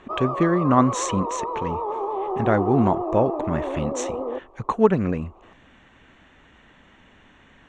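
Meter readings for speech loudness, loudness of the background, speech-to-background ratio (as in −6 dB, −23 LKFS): −23.5 LKFS, −28.0 LKFS, 4.5 dB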